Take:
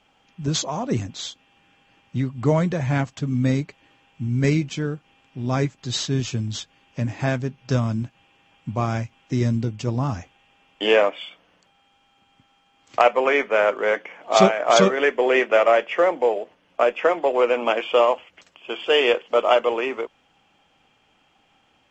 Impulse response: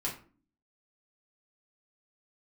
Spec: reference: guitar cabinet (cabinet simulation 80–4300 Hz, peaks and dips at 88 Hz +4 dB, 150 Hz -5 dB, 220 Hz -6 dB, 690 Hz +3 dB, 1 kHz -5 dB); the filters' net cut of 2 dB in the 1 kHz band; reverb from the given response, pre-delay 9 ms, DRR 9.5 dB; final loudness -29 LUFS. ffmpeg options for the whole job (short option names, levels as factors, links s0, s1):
-filter_complex "[0:a]equalizer=f=1000:t=o:g=-3.5,asplit=2[s0][s1];[1:a]atrim=start_sample=2205,adelay=9[s2];[s1][s2]afir=irnorm=-1:irlink=0,volume=0.224[s3];[s0][s3]amix=inputs=2:normalize=0,highpass=80,equalizer=f=88:t=q:w=4:g=4,equalizer=f=150:t=q:w=4:g=-5,equalizer=f=220:t=q:w=4:g=-6,equalizer=f=690:t=q:w=4:g=3,equalizer=f=1000:t=q:w=4:g=-5,lowpass=f=4300:w=0.5412,lowpass=f=4300:w=1.3066,volume=0.447"